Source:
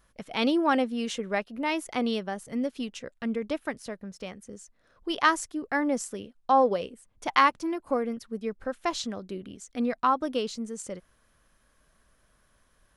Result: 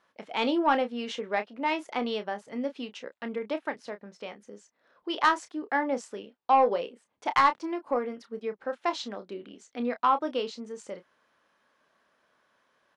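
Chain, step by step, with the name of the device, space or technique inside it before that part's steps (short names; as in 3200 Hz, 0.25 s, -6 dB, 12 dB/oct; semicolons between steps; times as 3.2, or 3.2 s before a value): intercom (BPF 300–4200 Hz; bell 880 Hz +5 dB 0.25 oct; soft clip -12 dBFS, distortion -18 dB; doubler 29 ms -10 dB)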